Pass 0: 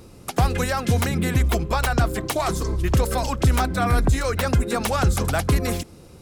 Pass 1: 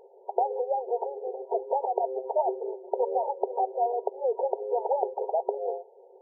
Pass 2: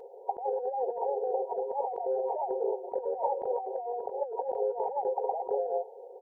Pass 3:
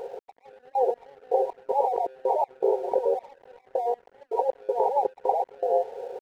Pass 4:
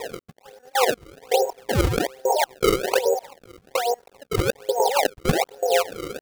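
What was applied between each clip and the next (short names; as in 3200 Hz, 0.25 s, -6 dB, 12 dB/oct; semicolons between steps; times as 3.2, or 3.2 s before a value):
FFT band-pass 370–950 Hz
comb 4 ms, depth 48%; negative-ratio compressor -33 dBFS, ratio -1; dynamic EQ 880 Hz, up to +5 dB, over -50 dBFS, Q 3.3
in parallel at -0.5 dB: compressor 6:1, threshold -37 dBFS, peak gain reduction 12.5 dB; on the sum: step gate "x...x..x.xx.x.xx" 80 bpm -24 dB; crossover distortion -58.5 dBFS; gain +6 dB
decimation with a swept rate 29×, swing 160% 1.2 Hz; gain +3.5 dB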